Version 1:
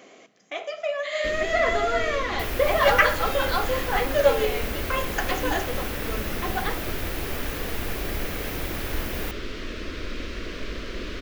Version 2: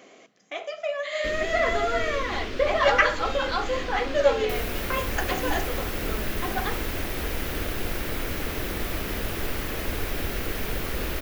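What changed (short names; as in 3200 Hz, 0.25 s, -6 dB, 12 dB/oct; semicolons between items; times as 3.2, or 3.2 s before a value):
speech: send -8.5 dB; second sound: entry +2.10 s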